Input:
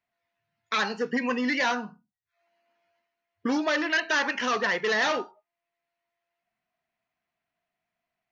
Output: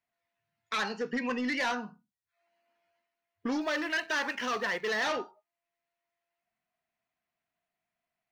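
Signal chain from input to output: 3.61–5.06 s: companding laws mixed up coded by A; saturation -20 dBFS, distortion -21 dB; trim -3.5 dB

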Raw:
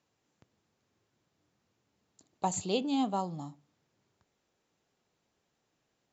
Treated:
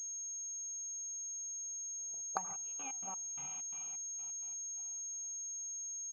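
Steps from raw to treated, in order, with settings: Doppler pass-by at 2.40 s, 12 m/s, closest 6.2 m; resonant low shelf 220 Hz +10 dB, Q 3; de-hum 52.97 Hz, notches 27; compression 10:1, threshold -31 dBFS, peak gain reduction 11 dB; auto-wah 540–2400 Hz, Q 4.4, up, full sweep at -36 dBFS; on a send at -8.5 dB: reverberation RT60 4.6 s, pre-delay 72 ms; on the sum: trance gate "x.x..xx.xx.." 129 bpm -24 dB; peaking EQ 880 Hz +4.5 dB 2.9 oct; low-pass that closes with the level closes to 1.3 kHz, closed at -57.5 dBFS; comb 2.5 ms, depth 38%; class-D stage that switches slowly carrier 6.5 kHz; trim +12 dB

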